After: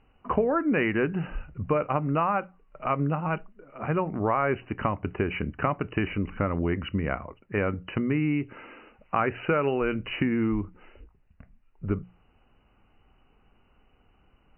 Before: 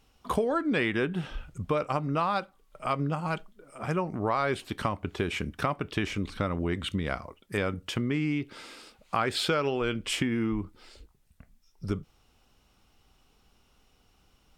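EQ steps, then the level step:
linear-phase brick-wall low-pass 3,000 Hz
high-frequency loss of the air 230 metres
mains-hum notches 60/120/180 Hz
+3.5 dB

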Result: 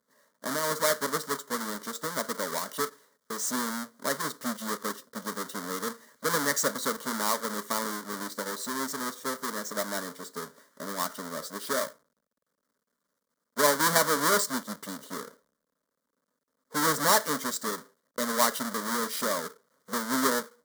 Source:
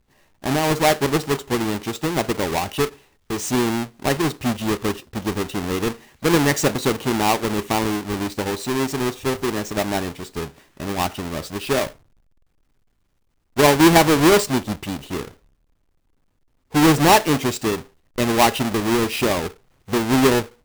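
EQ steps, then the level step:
phaser with its sweep stopped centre 520 Hz, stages 8
dynamic equaliser 410 Hz, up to −7 dB, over −35 dBFS, Q 0.87
high-pass filter 310 Hz 12 dB per octave
−1.5 dB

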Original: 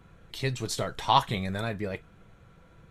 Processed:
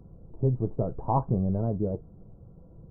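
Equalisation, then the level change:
Gaussian smoothing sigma 13 samples
+6.5 dB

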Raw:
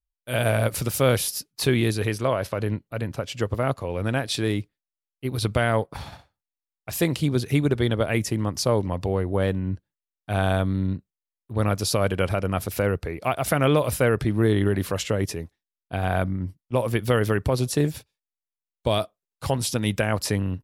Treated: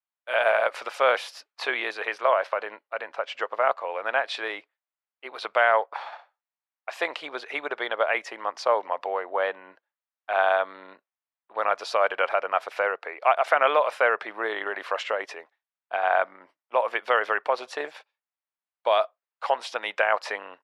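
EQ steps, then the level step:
high-pass filter 660 Hz 24 dB per octave
low-pass filter 2,000 Hz 12 dB per octave
+7.0 dB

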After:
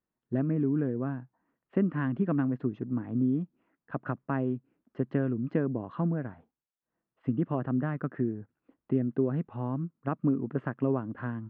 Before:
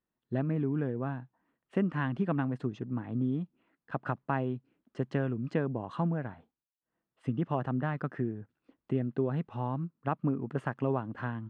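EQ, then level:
low-pass filter 2,000 Hz 12 dB per octave
dynamic equaliser 280 Hz, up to +5 dB, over −41 dBFS, Q 1.4
dynamic equaliser 840 Hz, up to −6 dB, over −50 dBFS, Q 3.2
0.0 dB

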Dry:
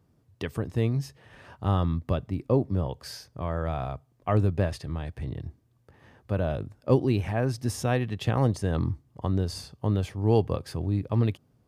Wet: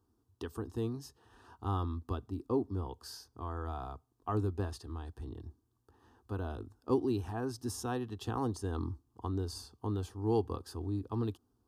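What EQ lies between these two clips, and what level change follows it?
phaser with its sweep stopped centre 580 Hz, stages 6
−4.5 dB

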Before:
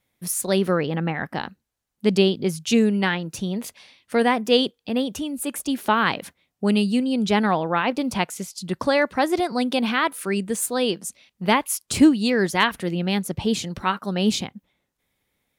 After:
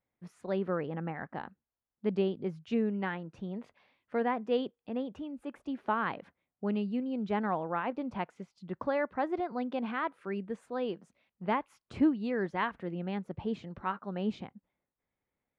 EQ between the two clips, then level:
low-pass filter 1,500 Hz 12 dB per octave
low-shelf EQ 390 Hz −4 dB
−9.0 dB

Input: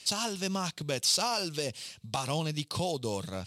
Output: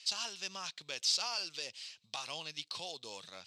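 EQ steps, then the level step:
high-frequency loss of the air 180 metres
first difference
+7.5 dB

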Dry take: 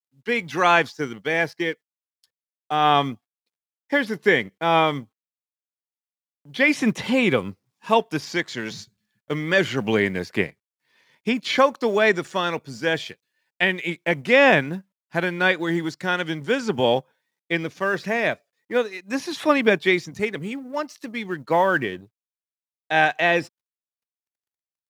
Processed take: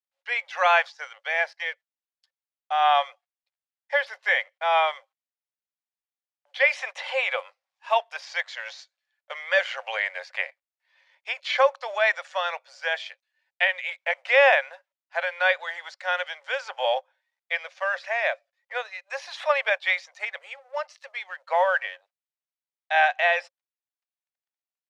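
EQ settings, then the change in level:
Chebyshev high-pass with heavy ripple 530 Hz, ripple 3 dB
high-frequency loss of the air 91 metres
0.0 dB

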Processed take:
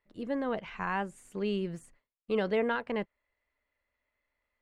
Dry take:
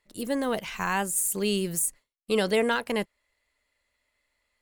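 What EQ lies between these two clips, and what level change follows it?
low-pass filter 2,200 Hz 12 dB per octave
−4.5 dB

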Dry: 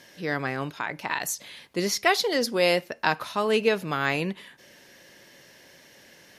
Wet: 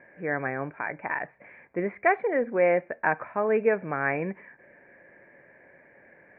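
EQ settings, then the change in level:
Chebyshev low-pass with heavy ripple 2,400 Hz, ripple 6 dB
+2.0 dB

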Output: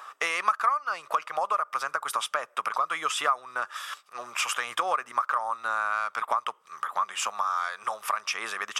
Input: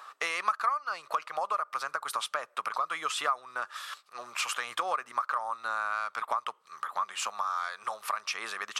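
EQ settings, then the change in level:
notch filter 4,200 Hz, Q 5.4
+4.0 dB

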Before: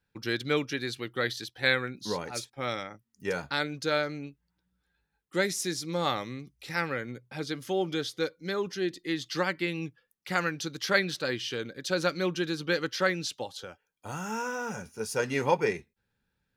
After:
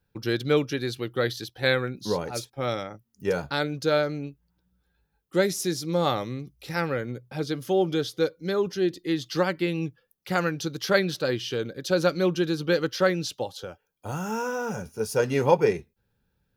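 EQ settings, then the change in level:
octave-band graphic EQ 250/1,000/2,000/4,000/8,000 Hz −4/−4/−9/−4/−8 dB
+8.5 dB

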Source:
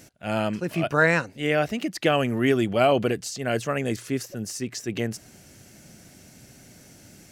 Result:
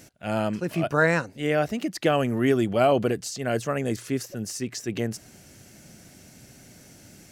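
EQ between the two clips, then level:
dynamic equaliser 2,600 Hz, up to −5 dB, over −39 dBFS, Q 1.1
0.0 dB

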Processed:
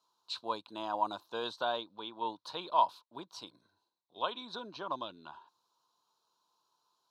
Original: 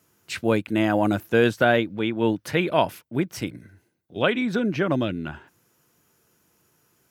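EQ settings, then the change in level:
pair of resonant band-passes 2,000 Hz, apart 2 octaves
+2.0 dB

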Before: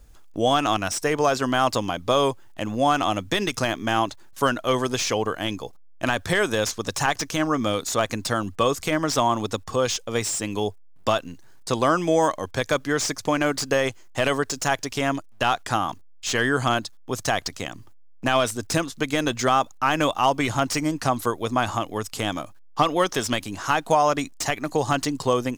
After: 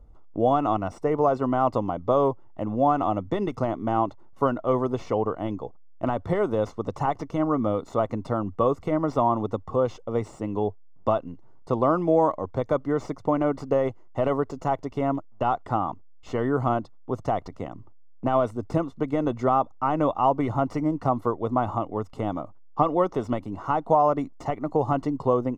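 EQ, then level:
Savitzky-Golay smoothing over 65 samples
0.0 dB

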